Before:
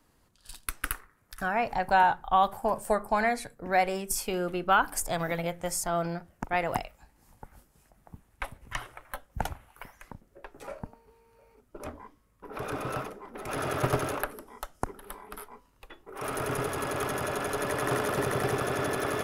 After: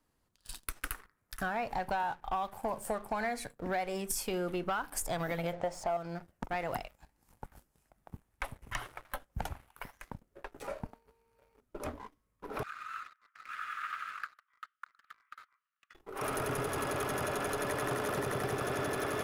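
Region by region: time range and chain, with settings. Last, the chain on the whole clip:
5.53–5.97 LPF 4300 Hz + bell 670 Hz +13.5 dB 1.3 oct
12.63–15.95 Chebyshev high-pass 1200 Hz, order 6 + air absorption 480 m
whole clip: compressor 5:1, threshold -31 dBFS; sample leveller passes 2; gain -7 dB

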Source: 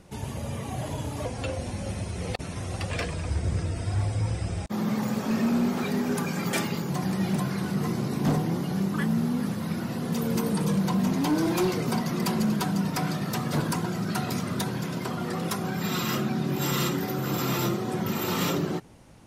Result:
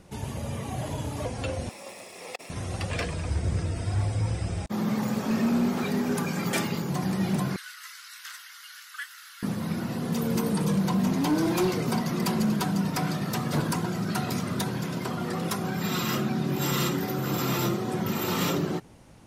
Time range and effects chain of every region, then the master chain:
1.69–2.5 minimum comb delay 0.39 ms + HPF 520 Hz + notch comb 1500 Hz
7.56–9.43 elliptic high-pass 1400 Hz, stop band 60 dB + notch 2400 Hz, Q 15
whole clip: dry

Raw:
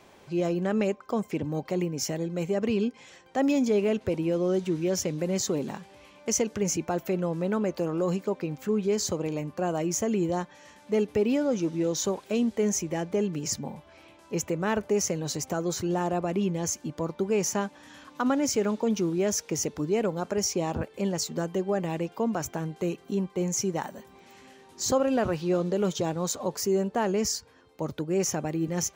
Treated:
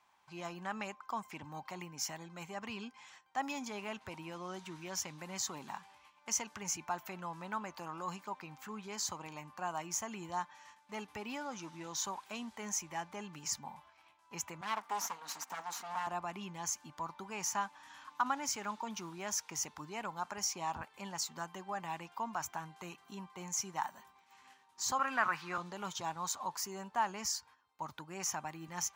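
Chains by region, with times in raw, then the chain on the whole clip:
14.61–16.07 minimum comb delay 4.3 ms + Chebyshev high-pass 270 Hz + Doppler distortion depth 0.16 ms
24.99–25.58 HPF 150 Hz 24 dB/oct + band shelf 1600 Hz +9.5 dB 1.3 oct
whole clip: gate -51 dBFS, range -10 dB; resonant low shelf 670 Hz -11 dB, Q 3; gain -6.5 dB

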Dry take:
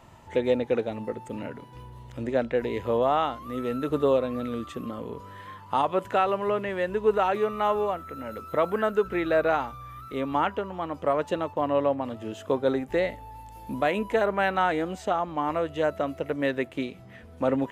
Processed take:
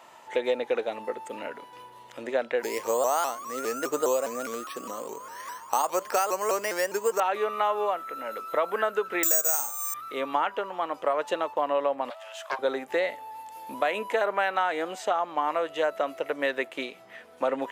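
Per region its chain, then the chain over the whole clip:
2.63–7.2 careless resampling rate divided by 6×, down filtered, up hold + shaped vibrato saw up 4.9 Hz, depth 160 cents
9.23–9.94 careless resampling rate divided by 6×, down none, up zero stuff + de-hum 74.98 Hz, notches 33
12.1–12.59 steep high-pass 590 Hz 72 dB/oct + Doppler distortion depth 0.31 ms
whole clip: HPF 540 Hz 12 dB/oct; compressor 4:1, threshold -26 dBFS; gain +4.5 dB

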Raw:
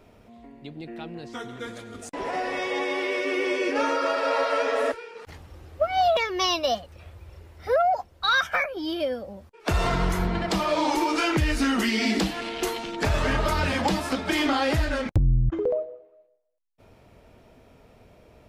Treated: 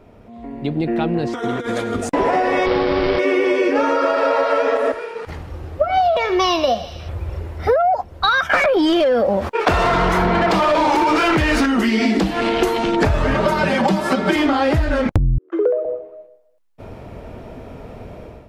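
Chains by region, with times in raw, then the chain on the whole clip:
1.27–1.95 tone controls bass -7 dB, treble +1 dB + negative-ratio compressor -39 dBFS, ratio -0.5
2.66–3.19 switching dead time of 0.2 ms + low shelf 180 Hz +9.5 dB + careless resampling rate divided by 4×, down none, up filtered
4.77–7.09 flange 1.8 Hz, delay 4.9 ms, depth 3.6 ms, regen -82% + thinning echo 77 ms, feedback 71%, high-pass 1100 Hz, level -13 dB
8.49–11.66 expander -36 dBFS + overdrive pedal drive 20 dB, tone 4300 Hz, clips at -13.5 dBFS + fast leveller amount 70%
13.34–14.36 HPF 120 Hz + comb 5.2 ms, depth 90% + short-mantissa float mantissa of 8-bit
15.38–15.85 rippled Chebyshev high-pass 330 Hz, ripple 6 dB + bell 900 Hz -7 dB 0.69 oct + core saturation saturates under 270 Hz
whole clip: AGC gain up to 11.5 dB; high shelf 2200 Hz -11 dB; compressor 10:1, threshold -21 dBFS; gain +7.5 dB

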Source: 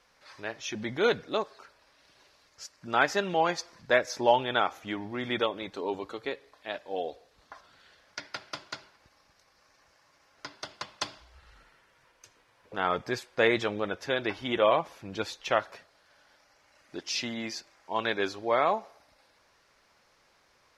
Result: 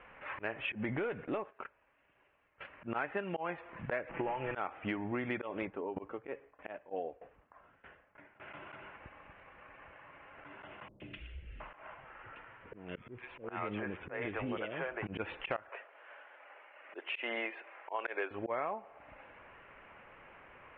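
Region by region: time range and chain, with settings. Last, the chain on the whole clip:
0.73–2.65 gate -51 dBFS, range -16 dB + compressor 1.5:1, threshold -51 dBFS + sample leveller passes 1
4.09–4.55 CVSD 16 kbps + comb 6 ms, depth 46% + compressor 3:1, threshold -29 dBFS
5.65–8.4 LPF 1500 Hz 6 dB/oct + dB-ramp tremolo decaying 3.2 Hz, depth 20 dB
10.88–15.07 compressor 2.5:1, threshold -44 dBFS + three bands offset in time lows, highs, mids 0.12/0.72 s, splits 430/2300 Hz
15.69–18.31 HPF 400 Hz 24 dB/oct + tremolo 2.4 Hz, depth 37%
whole clip: steep low-pass 2900 Hz 72 dB/oct; auto swell 0.179 s; compressor 10:1, threshold -44 dBFS; gain +10.5 dB

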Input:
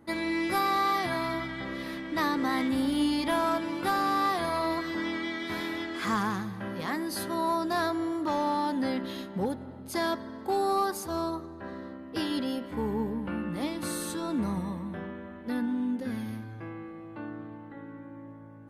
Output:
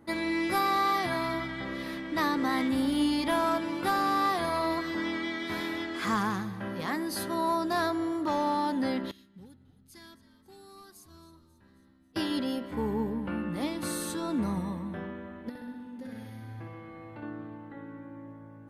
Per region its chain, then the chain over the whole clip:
9.11–12.16 passive tone stack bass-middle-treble 6-0-2 + frequency-shifting echo 0.27 s, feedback 56%, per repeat -90 Hz, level -16 dB
15.49–17.23 notch 1100 Hz, Q 19 + compressor 8:1, threshold -40 dBFS + flutter echo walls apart 10.7 m, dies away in 1.1 s
whole clip: dry

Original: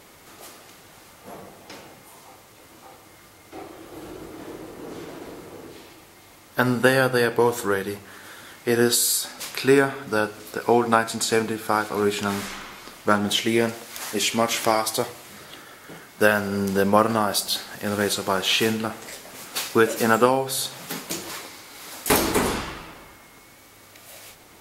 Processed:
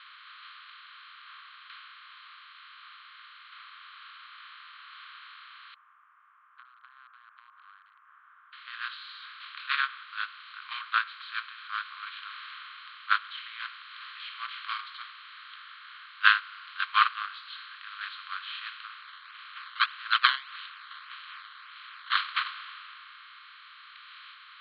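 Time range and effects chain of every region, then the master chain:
5.74–8.53 Bessel low-pass 560 Hz, order 8 + compressor 2.5:1, threshold -34 dBFS
19.01–22.17 BPF 370–6300 Hz + decimation with a swept rate 12× 1.7 Hz
whole clip: per-bin compression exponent 0.4; gate -9 dBFS, range -27 dB; Chebyshev band-pass 1100–4200 Hz, order 5; gain +6 dB

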